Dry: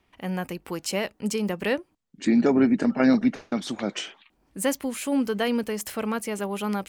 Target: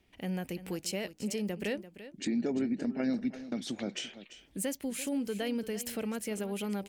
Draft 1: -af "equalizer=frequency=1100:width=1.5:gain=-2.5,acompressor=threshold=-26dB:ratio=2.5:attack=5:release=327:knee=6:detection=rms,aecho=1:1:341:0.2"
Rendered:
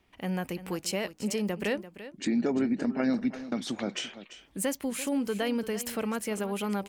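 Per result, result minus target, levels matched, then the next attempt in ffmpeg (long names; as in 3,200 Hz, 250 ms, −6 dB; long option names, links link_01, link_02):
1,000 Hz band +4.5 dB; downward compressor: peak gain reduction −3.5 dB
-af "equalizer=frequency=1100:width=1.5:gain=-11.5,acompressor=threshold=-26dB:ratio=2.5:attack=5:release=327:knee=6:detection=rms,aecho=1:1:341:0.2"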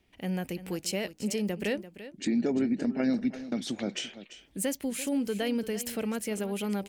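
downward compressor: peak gain reduction −4 dB
-af "equalizer=frequency=1100:width=1.5:gain=-11.5,acompressor=threshold=-32.5dB:ratio=2.5:attack=5:release=327:knee=6:detection=rms,aecho=1:1:341:0.2"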